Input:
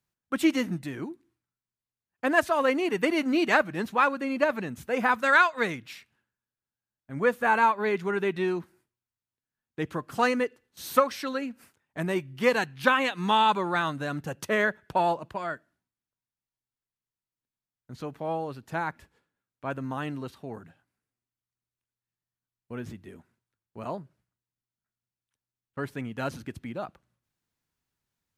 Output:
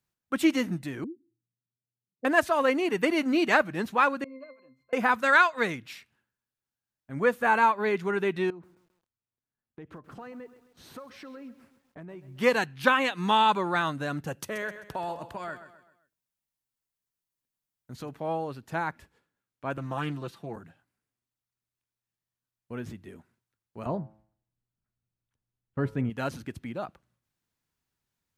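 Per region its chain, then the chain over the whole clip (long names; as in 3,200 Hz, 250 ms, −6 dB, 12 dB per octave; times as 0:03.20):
0:01.04–0:02.25: expanding power law on the bin magnitudes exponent 1.7 + elliptic band-pass filter 110–510 Hz
0:04.24–0:04.93: high-pass filter 480 Hz + resonances in every octave C, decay 0.3 s
0:08.50–0:12.39: low-pass filter 1,100 Hz 6 dB per octave + downward compressor 5 to 1, threshold −42 dBFS + feedback echo at a low word length 133 ms, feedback 55%, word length 10 bits, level −15 dB
0:14.33–0:18.09: high-shelf EQ 7,000 Hz +7 dB + downward compressor 2.5 to 1, threshold −34 dBFS + repeating echo 130 ms, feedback 41%, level −12 dB
0:19.77–0:20.56: high-pass filter 77 Hz 24 dB per octave + comb filter 5.9 ms, depth 55% + highs frequency-modulated by the lows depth 0.18 ms
0:23.86–0:26.10: spectral tilt −3 dB per octave + hum removal 108 Hz, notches 13
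whole clip: no processing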